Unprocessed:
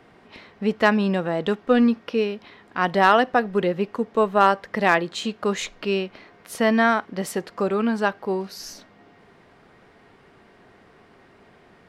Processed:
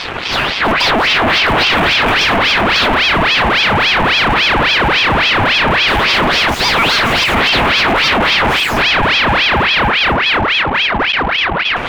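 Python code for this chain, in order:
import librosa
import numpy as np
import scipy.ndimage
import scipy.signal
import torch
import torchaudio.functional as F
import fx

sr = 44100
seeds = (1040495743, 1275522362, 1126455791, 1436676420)

p1 = fx.hum_notches(x, sr, base_hz=60, count=8)
p2 = p1 + fx.echo_opening(p1, sr, ms=247, hz=750, octaves=1, feedback_pct=70, wet_db=-3, dry=0)
p3 = fx.filter_lfo_lowpass(p2, sr, shape='square', hz=0.17, low_hz=370.0, high_hz=5700.0, q=4.2)
p4 = fx.doubler(p3, sr, ms=15.0, db=-4.5, at=(1.39, 2.24))
p5 = fx.tilt_eq(p4, sr, slope=4.0, at=(6.54, 7.24))
p6 = fx.over_compress(p5, sr, threshold_db=-22.0, ratio=-1.0)
p7 = p5 + (p6 * librosa.db_to_amplitude(2.5))
p8 = fx.fuzz(p7, sr, gain_db=37.0, gate_db=-46.0)
p9 = fx.high_shelf_res(p8, sr, hz=3400.0, db=-14.0, q=1.5)
p10 = fx.ring_lfo(p9, sr, carrier_hz=1700.0, swing_pct=75, hz=3.6)
y = p10 * librosa.db_to_amplitude(4.5)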